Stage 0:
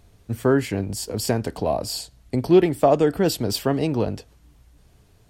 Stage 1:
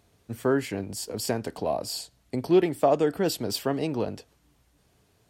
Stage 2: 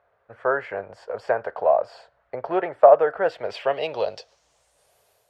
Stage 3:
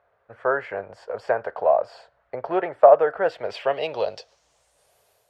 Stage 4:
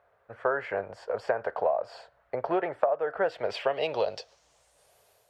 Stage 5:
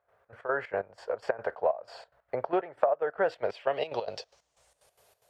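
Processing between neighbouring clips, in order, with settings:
HPF 190 Hz 6 dB/oct; gain -4 dB
AGC gain up to 4.5 dB; resonant low shelf 390 Hz -12.5 dB, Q 3; low-pass sweep 1500 Hz -> 12000 Hz, 3.2–4.98; gain -2.5 dB
nothing audible
compressor 16:1, threshold -22 dBFS, peak gain reduction 16 dB
step gate ".xx.x.xx.x." 184 bpm -12 dB

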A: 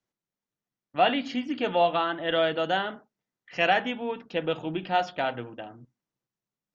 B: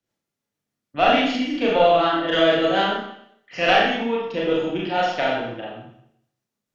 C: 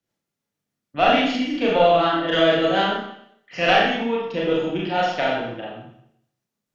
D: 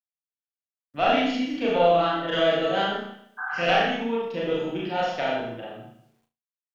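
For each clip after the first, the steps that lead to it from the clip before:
rotary speaker horn 6.7 Hz; added harmonics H 2 -13 dB, 6 -43 dB, 8 -43 dB, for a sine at -11.5 dBFS; Schroeder reverb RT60 0.7 s, combs from 27 ms, DRR -4.5 dB; gain +4.5 dB
bell 170 Hz +4 dB 0.33 oct
spectral repair 3.41–3.63, 750–1700 Hz after; bit-crush 11-bit; on a send: flutter echo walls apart 6 m, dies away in 0.27 s; on the sum: gain -5.5 dB

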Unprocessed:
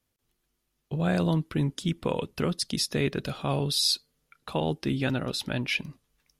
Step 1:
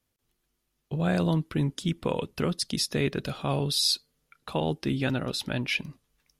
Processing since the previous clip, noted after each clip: nothing audible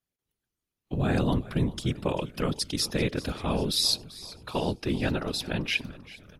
spectral noise reduction 10 dB; frequency-shifting echo 0.39 s, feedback 54%, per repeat -44 Hz, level -18 dB; whisperiser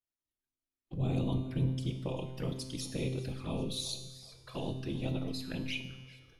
envelope flanger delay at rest 3.2 ms, full sweep at -25.5 dBFS; resonator 130 Hz, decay 1.3 s, harmonics all, mix 80%; shoebox room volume 940 m³, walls furnished, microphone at 0.71 m; gain +3.5 dB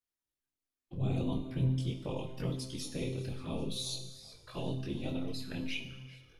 detuned doubles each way 16 cents; gain +3 dB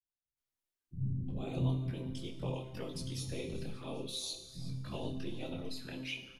bands offset in time lows, highs 0.37 s, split 220 Hz; gain -1.5 dB

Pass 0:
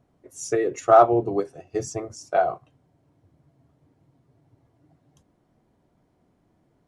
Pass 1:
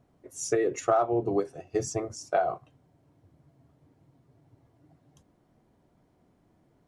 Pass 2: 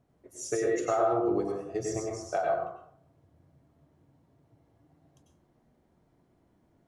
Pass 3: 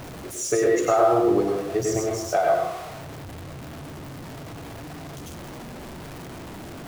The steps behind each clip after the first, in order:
compressor 6:1, threshold -21 dBFS, peak gain reduction 11.5 dB
plate-style reverb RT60 0.64 s, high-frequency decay 0.5×, pre-delay 85 ms, DRR -0.5 dB; gain -5 dB
zero-crossing step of -39.5 dBFS; gain +7 dB

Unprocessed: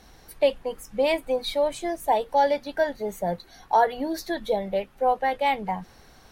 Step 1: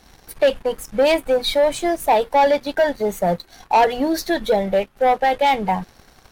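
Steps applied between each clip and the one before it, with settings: sample leveller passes 2; gain +1.5 dB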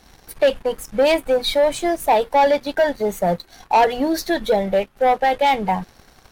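nothing audible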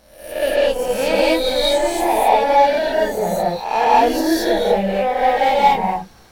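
spectral swells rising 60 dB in 0.63 s; non-linear reverb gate 0.25 s rising, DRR -6 dB; gain -7 dB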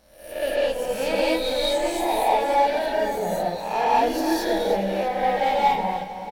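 regenerating reverse delay 0.318 s, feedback 48%, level -11.5 dB; echo 0.319 s -15.5 dB; gain -6.5 dB

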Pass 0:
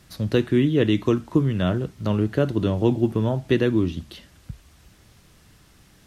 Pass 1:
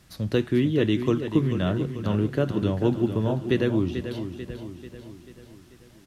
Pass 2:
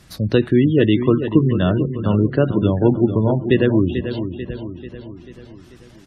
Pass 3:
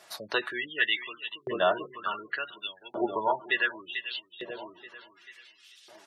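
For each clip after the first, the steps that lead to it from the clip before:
feedback echo 0.44 s, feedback 53%, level -9.5 dB; gain -3 dB
spectral gate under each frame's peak -30 dB strong; gain +7.5 dB
wow and flutter 19 cents; notch comb 260 Hz; LFO high-pass saw up 0.68 Hz 630–3800 Hz; gain -1.5 dB

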